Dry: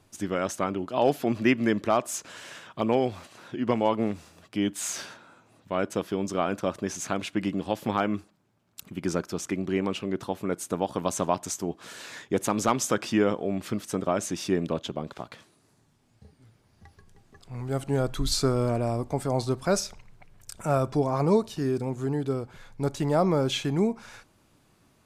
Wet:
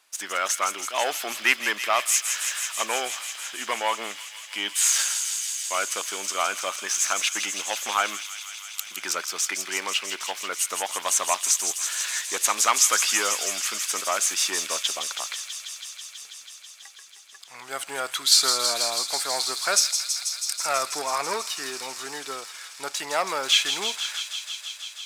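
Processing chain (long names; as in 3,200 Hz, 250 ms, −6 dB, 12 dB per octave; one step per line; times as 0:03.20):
leveller curve on the samples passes 1
high-pass filter 1,400 Hz 12 dB per octave
on a send: delay with a high-pass on its return 163 ms, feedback 85%, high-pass 3,000 Hz, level −6 dB
on the sum: level +8 dB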